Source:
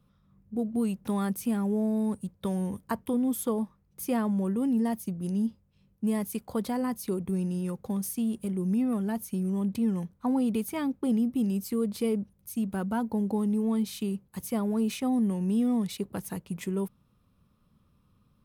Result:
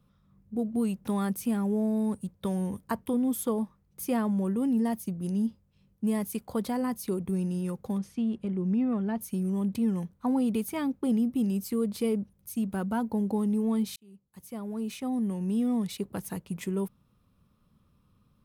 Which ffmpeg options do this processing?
-filter_complex "[0:a]asettb=1/sr,asplit=3[a][b][c];[a]atrim=end=7.984[d];[b]atrim=start=7.98:end=9.21,asetpts=PTS-STARTPTS,afade=t=in:d=0.004:c=qsin,afade=t=out:st=1.226:d=0.004:c=qsin,lowpass=3.3k[e];[c]atrim=start=9.206[f];[d][e]acrossfade=d=0.004:c1=hsin:c2=qsin[g];[g][f]acrossfade=d=0.004:c1=qsin:c2=hsin,asplit=2[h][i];[h]atrim=end=13.96,asetpts=PTS-STARTPTS,afade=t=out:st=13.956:d=0.004:c=hsin[j];[i]atrim=start=13.96,asetpts=PTS-STARTPTS,afade=t=in:d=2.6:c=qsin[k];[j][k]concat=n=2:v=0:a=1"

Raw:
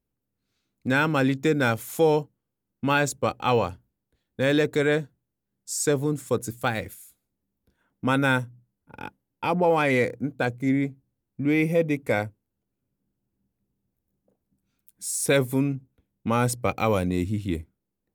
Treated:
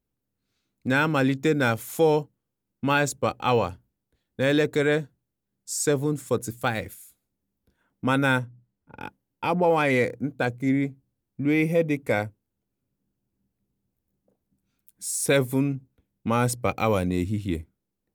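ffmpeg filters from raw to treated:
-filter_complex "[0:a]asettb=1/sr,asplit=3[a][b][c];[a]atrim=end=8.394[d];[b]atrim=start=8.39:end=9.01,asetpts=PTS-STARTPTS,afade=t=in:d=0.004:c=qsin,afade=t=out:st=0.616:d=0.004:c=qsin,highshelf=f=5.5k:g=-12[e];[c]atrim=start=9.006[f];[d][e]acrossfade=d=0.004:c1=hsin:c2=qsin[g];[g][f]acrossfade=d=0.004:c1=qsin:c2=hsin"

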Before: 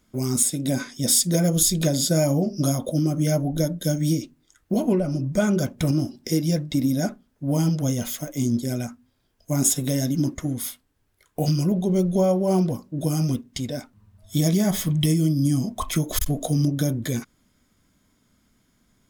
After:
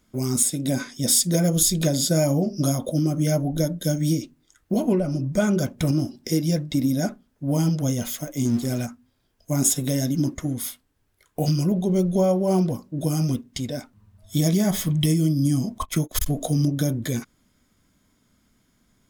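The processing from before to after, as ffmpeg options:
-filter_complex "[0:a]asettb=1/sr,asplit=3[a][b][c];[a]atrim=end=8.454[d];[b]atrim=start=8.45:end=8.86,asetpts=PTS-STARTPTS,afade=t=in:d=0.004:c=qsin,afade=t=out:st=0.406:d=0.004:c=qsin,aeval=exprs='val(0)+0.5*0.0168*sgn(val(0))':c=same[e];[c]atrim=start=8.856[f];[d][e]acrossfade=d=0.004:c1=hsin:c2=qsin[g];[g][f]acrossfade=d=0.004:c1=qsin:c2=hsin,asettb=1/sr,asplit=3[h][i][j];[h]atrim=end=15.784[k];[i]atrim=start=15.78:end=16.29,asetpts=PTS-STARTPTS,afade=t=in:d=0.004:c=qsin,afade=t=out:st=0.506:d=0.004:c=qsin,agate=range=-28dB:threshold=-30dB:ratio=16:release=100:detection=peak[l];[j]atrim=start=16.286[m];[k][l]acrossfade=d=0.004:c1=hsin:c2=qsin[n];[n][m]acrossfade=d=0.004:c1=qsin:c2=hsin"

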